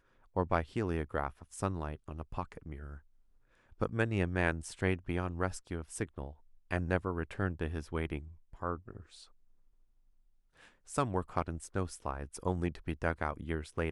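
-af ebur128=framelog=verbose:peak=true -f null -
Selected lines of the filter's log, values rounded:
Integrated loudness:
  I:         -36.6 LUFS
  Threshold: -47.1 LUFS
Loudness range:
  LRA:         5.6 LU
  Threshold: -57.9 LUFS
  LRA low:   -41.4 LUFS
  LRA high:  -35.7 LUFS
True peak:
  Peak:      -13.7 dBFS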